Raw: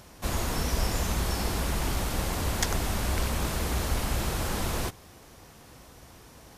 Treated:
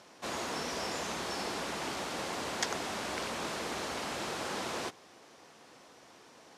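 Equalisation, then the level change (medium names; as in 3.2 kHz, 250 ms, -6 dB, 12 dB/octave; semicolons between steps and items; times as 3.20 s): band-pass 290–6700 Hz; -2.5 dB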